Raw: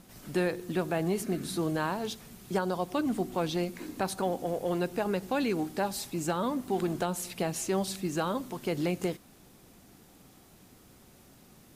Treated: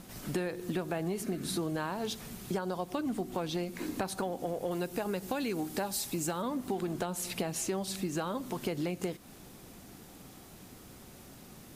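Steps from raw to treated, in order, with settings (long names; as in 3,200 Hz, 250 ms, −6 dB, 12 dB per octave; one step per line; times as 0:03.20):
0:04.71–0:06.42: high-shelf EQ 5,600 Hz +7.5 dB
downward compressor, threshold −36 dBFS, peak gain reduction 11.5 dB
level +5 dB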